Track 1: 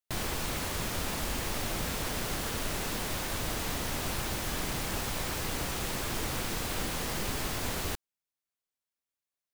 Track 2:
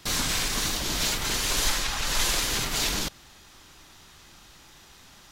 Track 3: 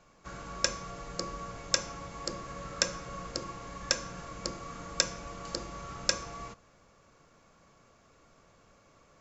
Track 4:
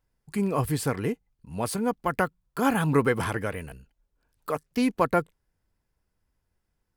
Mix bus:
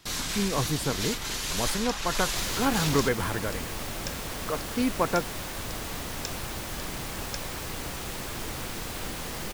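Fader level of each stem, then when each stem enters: -1.5, -5.0, -10.5, -2.5 dB; 2.25, 0.00, 1.25, 0.00 s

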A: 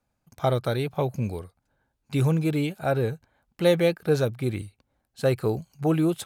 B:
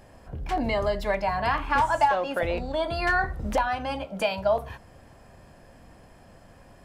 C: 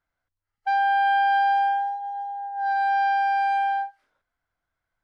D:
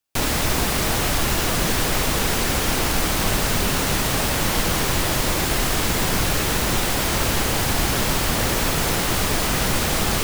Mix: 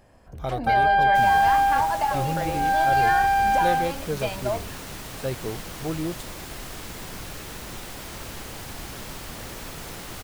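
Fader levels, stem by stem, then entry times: -7.0, -4.5, +2.0, -16.0 dB; 0.00, 0.00, 0.00, 1.00 s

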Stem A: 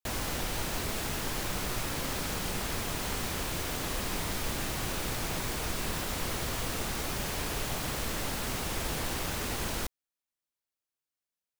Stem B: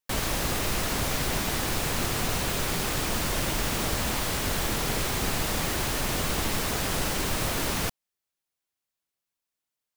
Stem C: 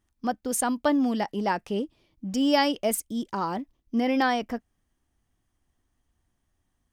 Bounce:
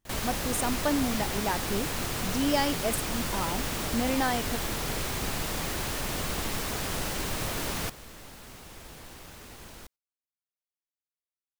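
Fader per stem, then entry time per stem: -13.0, -4.0, -4.5 dB; 0.00, 0.00, 0.00 s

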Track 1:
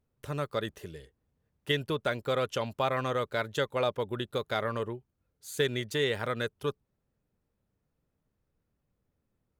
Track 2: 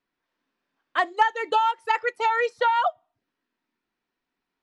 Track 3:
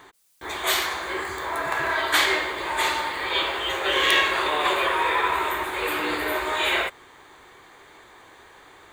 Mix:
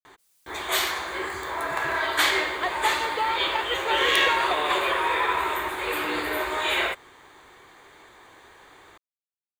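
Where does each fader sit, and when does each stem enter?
off, -5.5 dB, -1.5 dB; off, 1.65 s, 0.05 s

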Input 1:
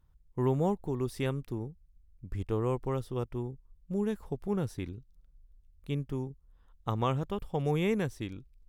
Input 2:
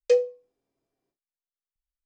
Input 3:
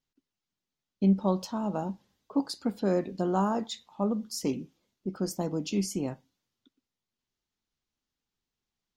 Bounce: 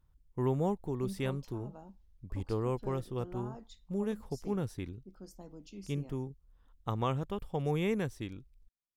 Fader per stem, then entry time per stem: -2.5 dB, off, -19.0 dB; 0.00 s, off, 0.00 s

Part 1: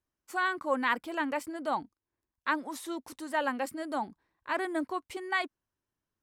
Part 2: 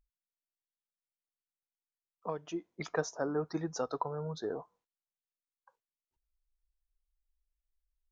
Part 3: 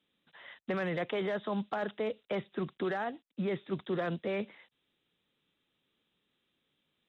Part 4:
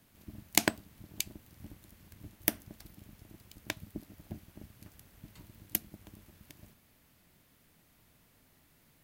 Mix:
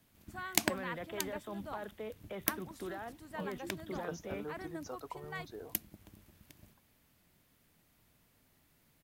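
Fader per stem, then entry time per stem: -14.0, -10.5, -9.5, -4.0 dB; 0.00, 1.10, 0.00, 0.00 s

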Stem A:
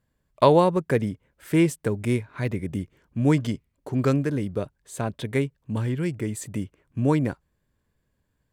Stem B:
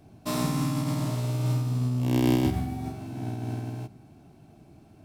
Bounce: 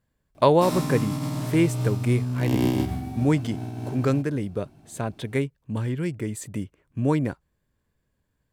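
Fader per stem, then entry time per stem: -1.0, -0.5 dB; 0.00, 0.35 s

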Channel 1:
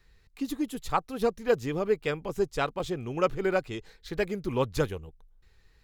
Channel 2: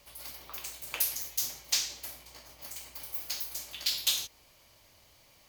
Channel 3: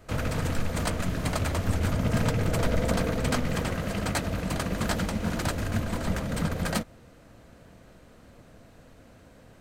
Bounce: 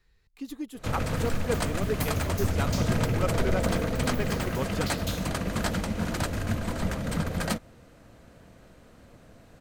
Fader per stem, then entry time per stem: -5.5, -10.0, -0.5 dB; 0.00, 1.00, 0.75 s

